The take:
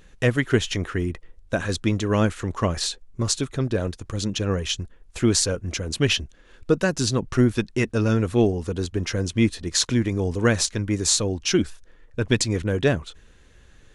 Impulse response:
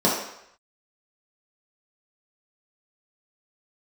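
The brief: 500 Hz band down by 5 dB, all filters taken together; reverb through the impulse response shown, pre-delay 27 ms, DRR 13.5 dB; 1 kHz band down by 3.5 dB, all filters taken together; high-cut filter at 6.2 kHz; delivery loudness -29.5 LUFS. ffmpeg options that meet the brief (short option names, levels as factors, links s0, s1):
-filter_complex "[0:a]lowpass=6200,equalizer=f=500:t=o:g=-6,equalizer=f=1000:t=o:g=-3,asplit=2[s0][s1];[1:a]atrim=start_sample=2205,adelay=27[s2];[s1][s2]afir=irnorm=-1:irlink=0,volume=0.0282[s3];[s0][s3]amix=inputs=2:normalize=0,volume=0.596"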